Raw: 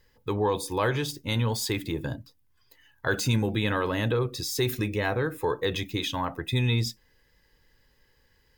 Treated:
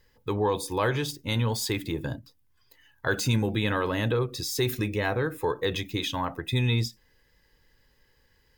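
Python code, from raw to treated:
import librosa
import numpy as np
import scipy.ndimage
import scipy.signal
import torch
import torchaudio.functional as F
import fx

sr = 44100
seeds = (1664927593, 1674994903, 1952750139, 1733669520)

y = fx.end_taper(x, sr, db_per_s=320.0)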